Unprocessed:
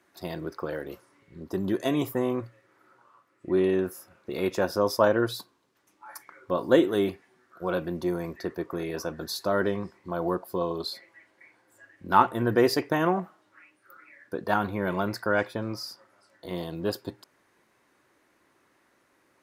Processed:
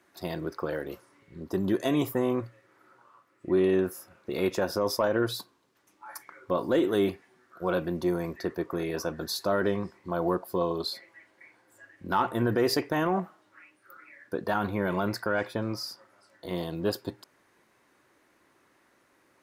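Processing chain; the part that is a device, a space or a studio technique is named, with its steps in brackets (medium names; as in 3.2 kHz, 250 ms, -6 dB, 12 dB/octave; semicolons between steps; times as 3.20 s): soft clipper into limiter (saturation -8 dBFS, distortion -24 dB; peak limiter -17 dBFS, peak gain reduction 8 dB); trim +1 dB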